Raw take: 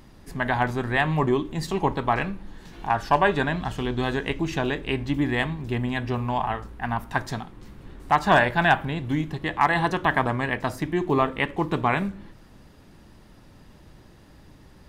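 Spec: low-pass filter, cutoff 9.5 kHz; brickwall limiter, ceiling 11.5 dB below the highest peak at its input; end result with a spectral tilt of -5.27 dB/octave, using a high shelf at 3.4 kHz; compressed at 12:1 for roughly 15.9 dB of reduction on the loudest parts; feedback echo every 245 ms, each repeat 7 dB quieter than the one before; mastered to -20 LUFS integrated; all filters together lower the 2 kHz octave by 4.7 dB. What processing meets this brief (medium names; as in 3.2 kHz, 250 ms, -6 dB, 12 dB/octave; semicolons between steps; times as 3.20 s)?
low-pass 9.5 kHz; peaking EQ 2 kHz -8 dB; treble shelf 3.4 kHz +7 dB; compression 12:1, threshold -31 dBFS; peak limiter -31 dBFS; feedback delay 245 ms, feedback 45%, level -7 dB; trim +20.5 dB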